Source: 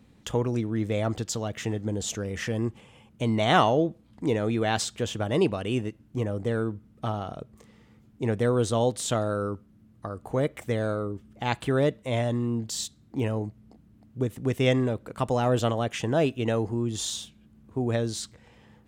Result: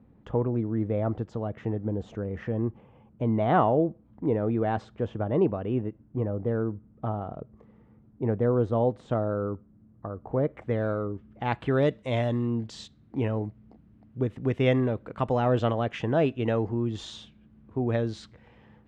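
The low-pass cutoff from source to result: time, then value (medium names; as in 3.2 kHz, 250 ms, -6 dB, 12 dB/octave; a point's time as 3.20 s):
10.41 s 1.1 kHz
10.85 s 2.1 kHz
11.61 s 2.1 kHz
11.94 s 5.2 kHz
12.83 s 2.6 kHz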